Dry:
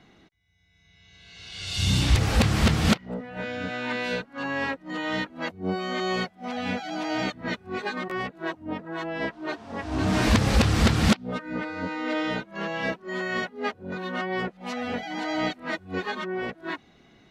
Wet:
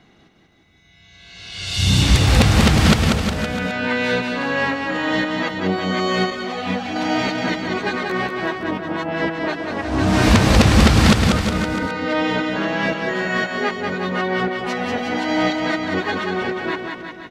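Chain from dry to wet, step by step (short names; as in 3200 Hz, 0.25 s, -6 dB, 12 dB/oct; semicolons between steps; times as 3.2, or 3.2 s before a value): on a send: bouncing-ball echo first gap 0.19 s, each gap 0.9×, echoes 5; on the sum: AGC gain up to 3.5 dB; 6.3–6.96 ensemble effect; gain +3 dB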